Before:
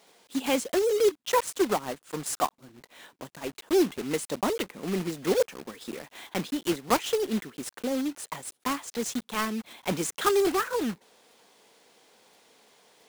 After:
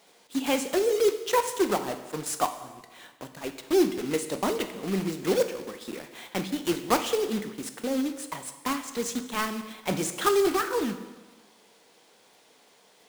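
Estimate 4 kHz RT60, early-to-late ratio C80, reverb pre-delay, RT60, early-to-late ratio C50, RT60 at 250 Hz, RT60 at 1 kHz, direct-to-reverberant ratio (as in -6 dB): 1.1 s, 12.0 dB, 5 ms, 1.2 s, 10.5 dB, 1.2 s, 1.2 s, 7.5 dB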